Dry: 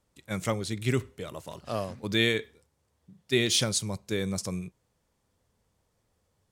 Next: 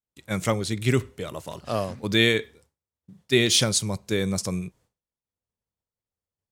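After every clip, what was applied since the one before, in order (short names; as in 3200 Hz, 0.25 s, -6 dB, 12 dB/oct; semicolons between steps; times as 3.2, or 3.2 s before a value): expander -57 dBFS; gain +5 dB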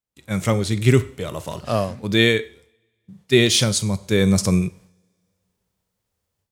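two-slope reverb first 0.61 s, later 2 s, from -25 dB, DRR 19 dB; harmonic-percussive split harmonic +6 dB; AGC gain up to 12 dB; gain -1 dB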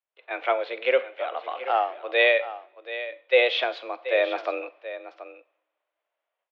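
echo 0.73 s -13.5 dB; mistuned SSB +130 Hz 370–3000 Hz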